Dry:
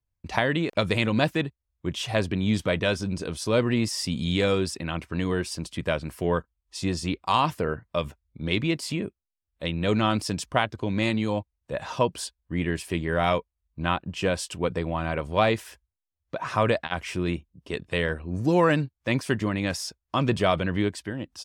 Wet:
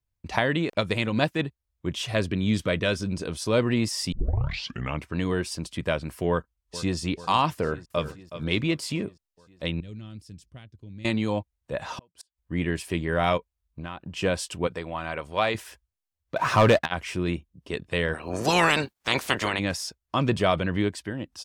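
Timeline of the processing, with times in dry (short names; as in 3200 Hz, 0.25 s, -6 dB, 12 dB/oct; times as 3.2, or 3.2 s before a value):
0.75–1.39 upward expander, over -44 dBFS
2.05–3.11 bell 820 Hz -12 dB 0.26 oct
4.12 tape start 0.92 s
6.29–6.97 echo throw 0.44 s, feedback 70%, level -15.5 dB
7.53–8.06 echo throw 0.37 s, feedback 25%, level -12 dB
9.8–11.05 passive tone stack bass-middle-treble 10-0-1
11.81–12.38 flipped gate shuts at -24 dBFS, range -39 dB
13.37–14.16 compressor, threshold -32 dBFS
14.67–15.55 low shelf 450 Hz -10 dB
16.36–16.86 sample leveller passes 2
18.13–19.58 spectral limiter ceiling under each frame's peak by 26 dB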